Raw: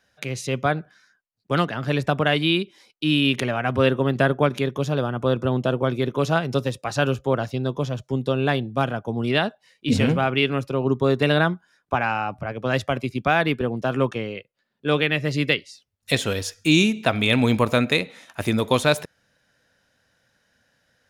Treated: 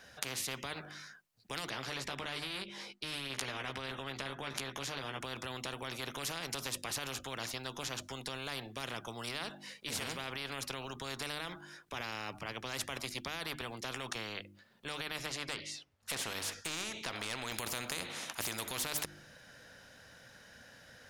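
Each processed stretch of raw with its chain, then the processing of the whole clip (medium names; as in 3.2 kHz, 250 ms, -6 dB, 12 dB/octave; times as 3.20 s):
1.70–5.21 s: low-pass 3.6 kHz 6 dB/octave + doubling 15 ms -4.5 dB
15.26–17.52 s: overdrive pedal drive 10 dB, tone 1.5 kHz, clips at -5 dBFS + compression 2:1, threshold -25 dBFS
whole clip: hum notches 50/100/150/200/250/300/350 Hz; peak limiter -16.5 dBFS; spectrum-flattening compressor 4:1; trim +2 dB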